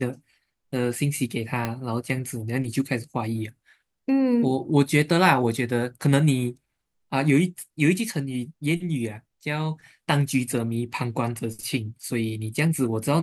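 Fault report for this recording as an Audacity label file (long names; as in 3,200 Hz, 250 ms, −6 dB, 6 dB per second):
1.650000	1.650000	click −12 dBFS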